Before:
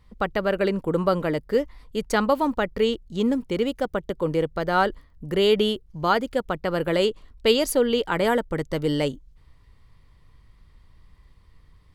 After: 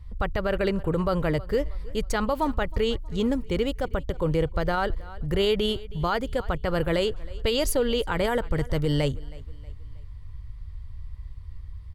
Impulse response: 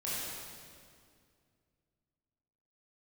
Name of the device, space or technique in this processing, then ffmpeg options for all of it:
car stereo with a boomy subwoofer: -af "lowshelf=f=140:t=q:w=1.5:g=14,aecho=1:1:318|636|954:0.0668|0.0287|0.0124,alimiter=limit=0.178:level=0:latency=1:release=44"

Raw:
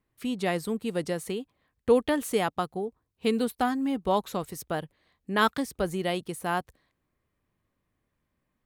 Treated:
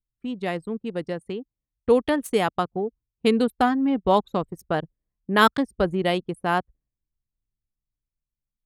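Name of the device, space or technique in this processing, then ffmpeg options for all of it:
voice memo with heavy noise removal: -af "anlmdn=6.31,dynaudnorm=f=480:g=9:m=2.24"

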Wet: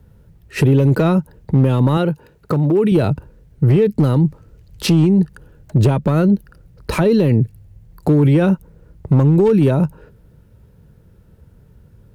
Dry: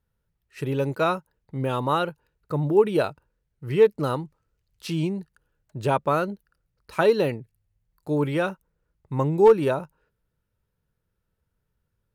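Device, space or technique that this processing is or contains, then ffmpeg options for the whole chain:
mastering chain: -filter_complex "[0:a]highpass=f=52:p=1,equalizer=f=1200:t=o:w=0.43:g=-2.5,acrossover=split=280|1600[s0][s1][s2];[s0]acompressor=threshold=0.0398:ratio=4[s3];[s1]acompressor=threshold=0.0224:ratio=4[s4];[s2]acompressor=threshold=0.0141:ratio=4[s5];[s3][s4][s5]amix=inputs=3:normalize=0,acompressor=threshold=0.0251:ratio=2.5,asoftclip=type=tanh:threshold=0.075,tiltshelf=f=660:g=7.5,asoftclip=type=hard:threshold=0.0708,alimiter=level_in=35.5:limit=0.891:release=50:level=0:latency=1,asettb=1/sr,asplit=3[s6][s7][s8];[s6]atrim=end=1.974[s9];[s7]atrim=start=1.97:end=2.92,asetpts=PTS-STARTPTS,afade=t=in:d=0.004:c=qsin,afade=t=out:st=0.946:d=0.004:c=qsin,highpass=f=210:p=1[s10];[s8]atrim=start=2.916[s11];[s9][s10]acrossfade=d=0.004:c1=hsin:c2=qsin[s12];[s12][s11]acrossfade=d=0.004:c1=qsin:c2=hsin,volume=0.501"

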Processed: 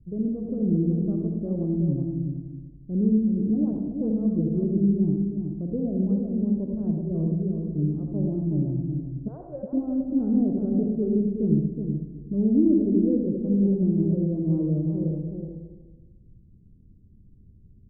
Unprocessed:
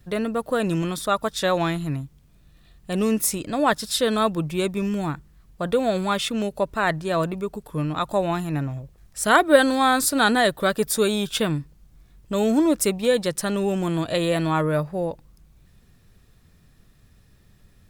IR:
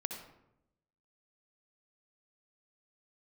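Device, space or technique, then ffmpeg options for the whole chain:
next room: -filter_complex "[0:a]lowpass=f=330:w=0.5412,lowpass=f=330:w=1.3066[s0];[1:a]atrim=start_sample=2205[s1];[s0][s1]afir=irnorm=-1:irlink=0,asettb=1/sr,asplit=3[s2][s3][s4];[s2]atrim=end=9.284[s5];[s3]atrim=start=9.28:end=9.73,asetpts=PTS-STARTPTS,afade=t=in:d=0.004:c=qsin,afade=t=out:st=0.446:d=0.004:c=qsin,highpass=f=580:w=0.5412,highpass=f=580:w=1.3066[s6];[s4]atrim=start=9.726[s7];[s5][s6]acrossfade=d=0.004:c1=hsin:c2=qsin[s8];[s8][s7]acrossfade=d=0.004:c1=qsin:c2=hsin,asplit=2[s9][s10];[s10]adelay=372,lowpass=f=2000:p=1,volume=0.562,asplit=2[s11][s12];[s12]adelay=372,lowpass=f=2000:p=1,volume=0.15,asplit=2[s13][s14];[s14]adelay=372,lowpass=f=2000:p=1,volume=0.15[s15];[s9][s11][s13][s15]amix=inputs=4:normalize=0,volume=1.12"

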